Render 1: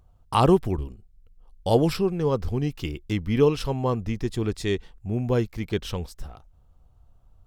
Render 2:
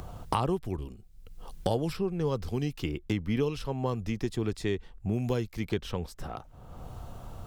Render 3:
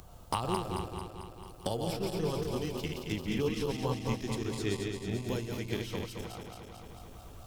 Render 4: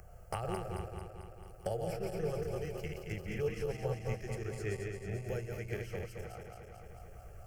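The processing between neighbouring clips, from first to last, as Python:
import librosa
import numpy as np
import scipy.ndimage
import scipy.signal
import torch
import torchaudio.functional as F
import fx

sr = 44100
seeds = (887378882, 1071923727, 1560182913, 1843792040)

y1 = fx.band_squash(x, sr, depth_pct=100)
y1 = y1 * librosa.db_to_amplitude(-6.5)
y2 = fx.reverse_delay_fb(y1, sr, ms=111, feedback_pct=83, wet_db=-3)
y2 = fx.high_shelf(y2, sr, hz=3000.0, db=9.5)
y2 = fx.upward_expand(y2, sr, threshold_db=-34.0, expansion=1.5)
y2 = y2 * librosa.db_to_amplitude(-5.0)
y3 = fx.high_shelf(y2, sr, hz=5000.0, db=-7.5)
y3 = fx.fixed_phaser(y3, sr, hz=1000.0, stages=6)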